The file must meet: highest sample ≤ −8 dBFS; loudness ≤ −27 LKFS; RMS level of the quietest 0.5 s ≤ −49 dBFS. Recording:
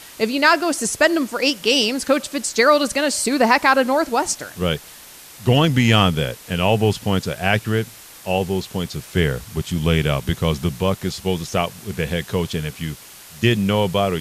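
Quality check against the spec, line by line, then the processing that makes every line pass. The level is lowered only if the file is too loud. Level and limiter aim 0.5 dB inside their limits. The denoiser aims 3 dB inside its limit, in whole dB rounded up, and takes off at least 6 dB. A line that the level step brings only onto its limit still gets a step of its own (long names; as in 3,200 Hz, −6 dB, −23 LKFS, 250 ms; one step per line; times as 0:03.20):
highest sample −3.5 dBFS: out of spec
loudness −19.5 LKFS: out of spec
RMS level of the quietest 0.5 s −42 dBFS: out of spec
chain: level −8 dB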